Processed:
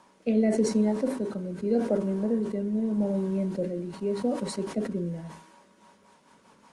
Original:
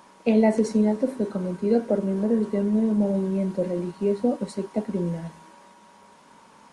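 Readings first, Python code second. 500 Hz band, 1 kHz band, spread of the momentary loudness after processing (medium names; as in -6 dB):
-4.0 dB, -5.5 dB, 8 LU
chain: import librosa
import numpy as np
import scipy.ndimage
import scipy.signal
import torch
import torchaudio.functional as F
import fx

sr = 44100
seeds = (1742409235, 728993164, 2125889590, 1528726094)

y = fx.rotary_switch(x, sr, hz=0.85, then_hz=5.5, switch_at_s=5.3)
y = fx.sustainer(y, sr, db_per_s=86.0)
y = y * 10.0 ** (-3.0 / 20.0)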